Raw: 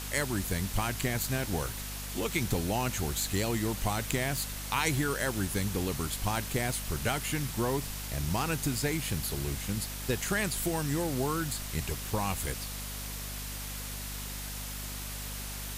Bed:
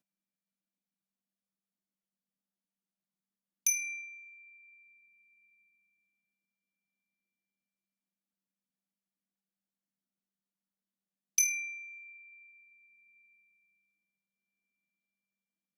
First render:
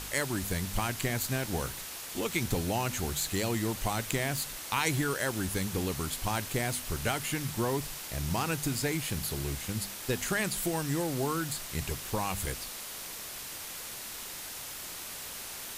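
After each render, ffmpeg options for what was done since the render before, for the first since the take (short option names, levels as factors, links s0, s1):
-af "bandreject=f=50:t=h:w=4,bandreject=f=100:t=h:w=4,bandreject=f=150:t=h:w=4,bandreject=f=200:t=h:w=4,bandreject=f=250:t=h:w=4"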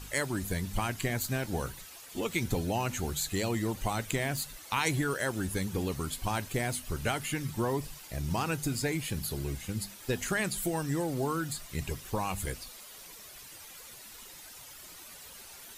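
-af "afftdn=nr=11:nf=-42"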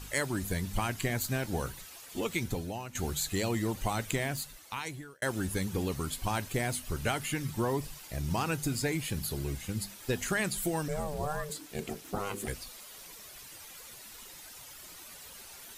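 -filter_complex "[0:a]asettb=1/sr,asplit=3[s0][s1][s2];[s0]atrim=end=10.884[s3];[s1]atrim=start=10.88:end=12.48,asetpts=PTS-STARTPTS,afade=t=in:d=0.004:c=qsin,afade=t=out:st=1.596:d=0.004:c=qsin,aeval=exprs='val(0)*sin(2*PI*300*n/s)':c=same[s4];[s2]atrim=start=12.476[s5];[s3][s4]acrossfade=d=0.004:c1=hsin:c2=qsin[s6];[s6][s5]acrossfade=d=0.004:c1=qsin:c2=hsin,asplit=3[s7][s8][s9];[s7]atrim=end=2.95,asetpts=PTS-STARTPTS,afade=t=out:st=2.24:d=0.71:silence=0.199526[s10];[s8]atrim=start=2.95:end=5.22,asetpts=PTS-STARTPTS,afade=t=in:d=0.004:c=hsin:silence=0.199526,afade=t=out:st=1.17:d=1.1[s11];[s9]atrim=start=5.22,asetpts=PTS-STARTPTS,afade=t=in:d=0.004:c=hsin[s12];[s10][s11][s12]concat=n=3:v=0:a=1"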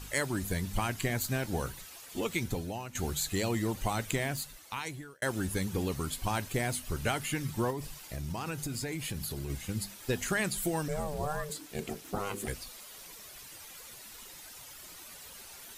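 -filter_complex "[0:a]asettb=1/sr,asplit=3[s0][s1][s2];[s0]atrim=end=7.704[s3];[s1]atrim=start=7.7:end=9.5,asetpts=PTS-STARTPTS,afade=t=in:d=0.004:c=qsin,afade=t=out:st=1.796:d=0.004:c=qsin,acompressor=threshold=0.0251:ratio=6:attack=3.2:release=140:knee=1:detection=peak[s4];[s2]atrim=start=9.496[s5];[s3][s4]acrossfade=d=0.004:c1=hsin:c2=qsin[s6];[s6][s5]acrossfade=d=0.004:c1=qsin:c2=hsin"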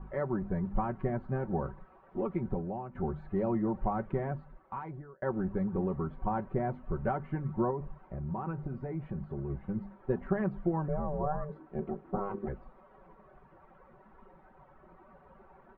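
-af "lowpass=f=1200:w=0.5412,lowpass=f=1200:w=1.3066,aecho=1:1:5.3:0.64"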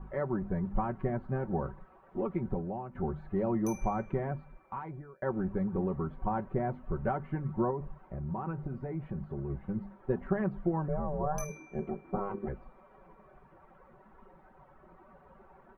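-filter_complex "[1:a]volume=0.126[s0];[0:a][s0]amix=inputs=2:normalize=0"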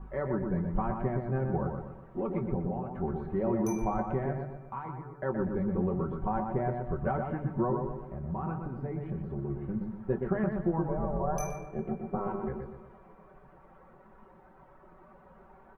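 -filter_complex "[0:a]asplit=2[s0][s1];[s1]adelay=23,volume=0.282[s2];[s0][s2]amix=inputs=2:normalize=0,asplit=2[s3][s4];[s4]adelay=122,lowpass=f=2200:p=1,volume=0.596,asplit=2[s5][s6];[s6]adelay=122,lowpass=f=2200:p=1,volume=0.48,asplit=2[s7][s8];[s8]adelay=122,lowpass=f=2200:p=1,volume=0.48,asplit=2[s9][s10];[s10]adelay=122,lowpass=f=2200:p=1,volume=0.48,asplit=2[s11][s12];[s12]adelay=122,lowpass=f=2200:p=1,volume=0.48,asplit=2[s13][s14];[s14]adelay=122,lowpass=f=2200:p=1,volume=0.48[s15];[s5][s7][s9][s11][s13][s15]amix=inputs=6:normalize=0[s16];[s3][s16]amix=inputs=2:normalize=0"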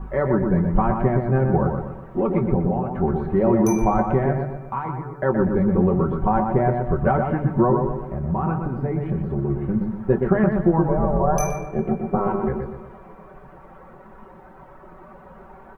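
-af "volume=3.76"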